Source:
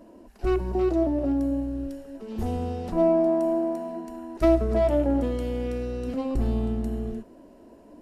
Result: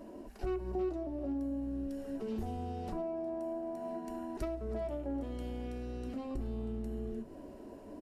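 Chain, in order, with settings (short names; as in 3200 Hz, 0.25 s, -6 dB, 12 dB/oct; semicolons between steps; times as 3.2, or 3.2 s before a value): compressor 6:1, threshold -37 dBFS, peak gain reduction 20.5 dB; frequency-shifting echo 0.39 s, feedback 65%, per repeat -71 Hz, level -23.5 dB; on a send at -8 dB: reverb RT60 0.15 s, pre-delay 3 ms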